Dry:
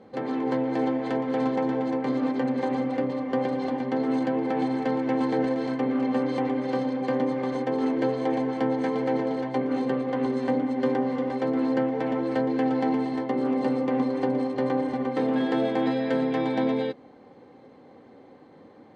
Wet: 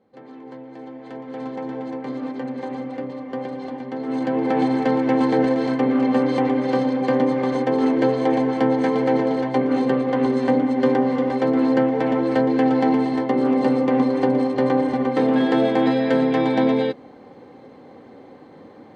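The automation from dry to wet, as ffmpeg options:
ffmpeg -i in.wav -af "volume=6.5dB,afade=type=in:start_time=0.85:duration=0.96:silence=0.334965,afade=type=in:start_time=4.01:duration=0.52:silence=0.334965" out.wav

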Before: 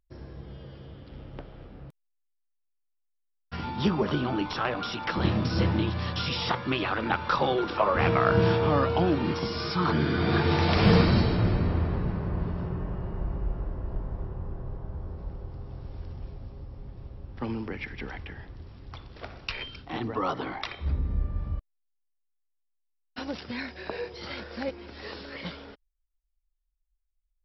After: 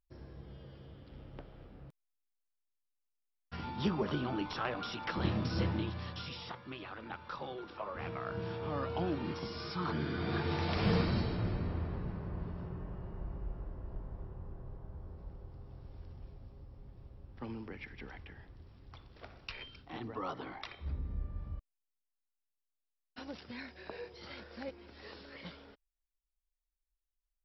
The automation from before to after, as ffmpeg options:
ffmpeg -i in.wav -af "volume=-0.5dB,afade=type=out:start_time=5.55:duration=0.98:silence=0.316228,afade=type=in:start_time=8.49:duration=0.54:silence=0.446684" out.wav

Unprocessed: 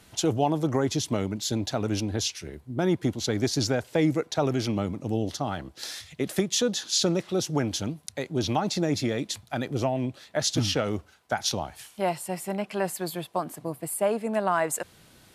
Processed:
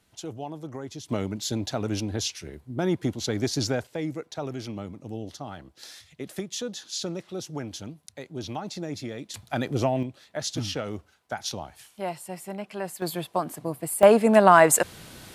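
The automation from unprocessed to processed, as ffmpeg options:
ffmpeg -i in.wav -af "asetnsamples=nb_out_samples=441:pad=0,asendcmd='1.09 volume volume -1dB;3.87 volume volume -8dB;9.34 volume volume 2dB;10.03 volume volume -5dB;13.02 volume volume 2dB;14.03 volume volume 10dB',volume=-12dB" out.wav

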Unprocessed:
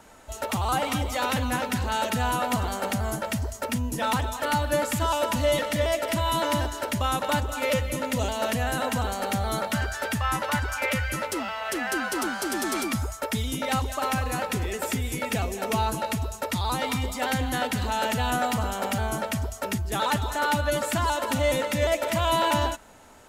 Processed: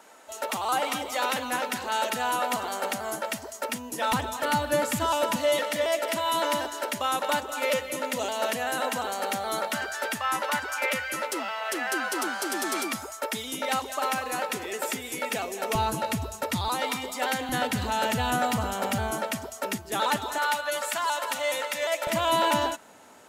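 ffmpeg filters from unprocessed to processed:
ffmpeg -i in.wav -af "asetnsamples=nb_out_samples=441:pad=0,asendcmd='4.12 highpass f 140;5.36 highpass f 340;15.75 highpass f 96;16.68 highpass f 320;17.49 highpass f 89;19.11 highpass f 240;20.38 highpass f 710;22.07 highpass f 180',highpass=360" out.wav

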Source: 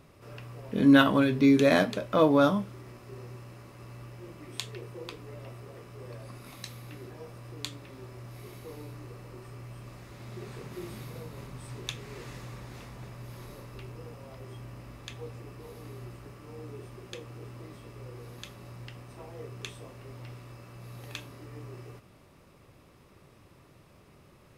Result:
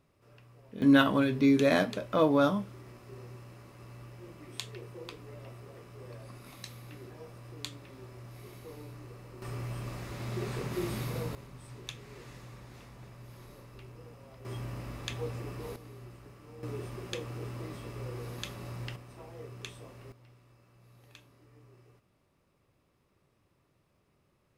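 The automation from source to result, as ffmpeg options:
ffmpeg -i in.wav -af "asetnsamples=nb_out_samples=441:pad=0,asendcmd='0.82 volume volume -3dB;9.42 volume volume 6.5dB;11.35 volume volume -6dB;14.45 volume volume 5dB;15.76 volume volume -5dB;16.63 volume volume 4.5dB;18.96 volume volume -3dB;20.12 volume volume -14.5dB',volume=-13dB" out.wav

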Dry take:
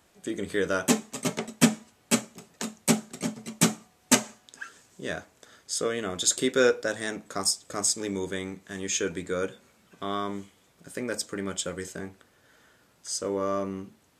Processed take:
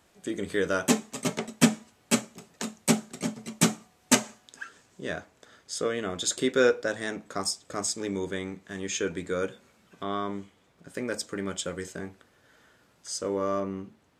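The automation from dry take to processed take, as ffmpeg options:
ffmpeg -i in.wav -af "asetnsamples=nb_out_samples=441:pad=0,asendcmd='4.64 lowpass f 4400;9.18 lowpass f 7300;10.03 lowpass f 2900;10.94 lowpass f 6800;13.6 lowpass f 2900',lowpass=frequency=11000:poles=1" out.wav

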